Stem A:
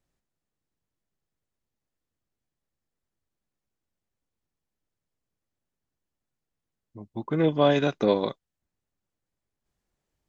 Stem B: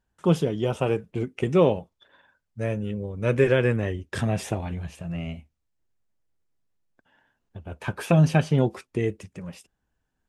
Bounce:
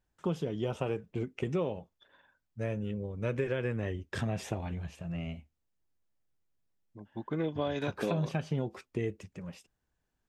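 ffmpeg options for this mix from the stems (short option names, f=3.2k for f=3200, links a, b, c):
-filter_complex "[0:a]volume=-6dB[a];[1:a]equalizer=f=9.8k:t=o:w=0.38:g=-9.5,volume=-5.5dB[b];[a][b]amix=inputs=2:normalize=0,acompressor=threshold=-28dB:ratio=6"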